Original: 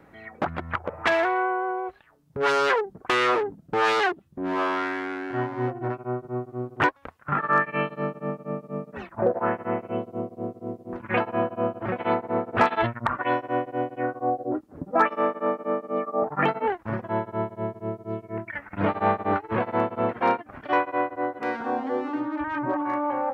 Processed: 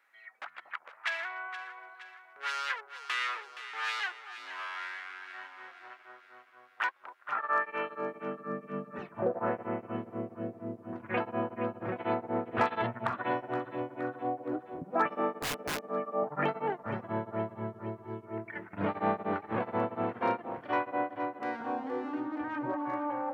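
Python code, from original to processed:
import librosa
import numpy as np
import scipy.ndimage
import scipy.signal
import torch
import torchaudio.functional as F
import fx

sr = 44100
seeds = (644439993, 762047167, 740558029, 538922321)

y = fx.filter_sweep_highpass(x, sr, from_hz=1700.0, to_hz=120.0, start_s=6.55, end_s=9.02, q=1.0)
y = fx.echo_alternate(y, sr, ms=235, hz=870.0, feedback_pct=72, wet_db=-9)
y = fx.overflow_wrap(y, sr, gain_db=20.5, at=(15.41, 15.82))
y = F.gain(torch.from_numpy(y), -8.0).numpy()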